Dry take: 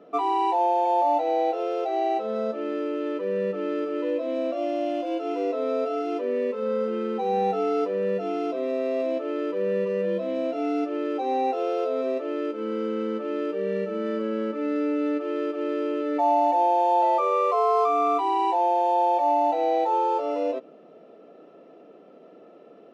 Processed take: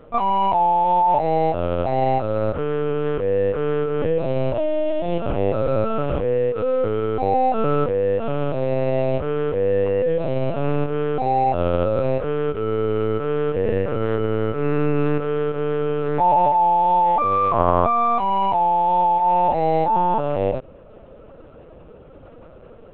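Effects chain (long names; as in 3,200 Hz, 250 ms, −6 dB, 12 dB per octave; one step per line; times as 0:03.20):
in parallel at −1.5 dB: speech leveller 2 s
on the sum: linear-prediction vocoder at 8 kHz pitch kept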